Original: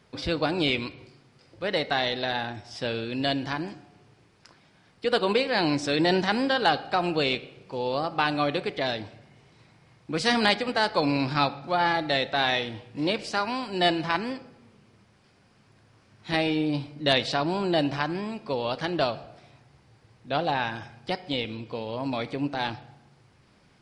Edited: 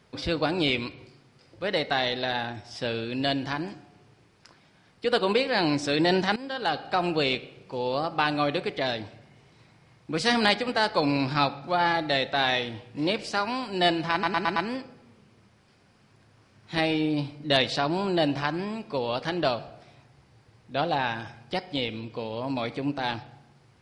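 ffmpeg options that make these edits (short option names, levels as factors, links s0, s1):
-filter_complex "[0:a]asplit=6[s0][s1][s2][s3][s4][s5];[s0]atrim=end=6.36,asetpts=PTS-STARTPTS,afade=t=out:st=6.356:d=0.004:c=hsin:silence=0.141254[s6];[s1]atrim=start=6.36:end=14.232,asetpts=PTS-STARTPTS,afade=t=in:d=0.63:silence=0.141254[s7];[s2]atrim=start=14.118:end=14.232[s8];[s3]atrim=start=14.118:end=14.232[s9];[s4]atrim=start=14.118:end=14.232[s10];[s5]atrim=start=14.118[s11];[s6][s7]concat=n=2:v=0:a=1[s12];[s12][s8]acrossfade=d=0.004:c1=hsin:c2=hsin[s13];[s13][s9]acrossfade=d=0.004:c1=hsin:c2=hsin[s14];[s14][s10]acrossfade=d=0.004:c1=hsin:c2=hsin[s15];[s15][s11]acrossfade=d=0.004:c1=hsin:c2=hsin"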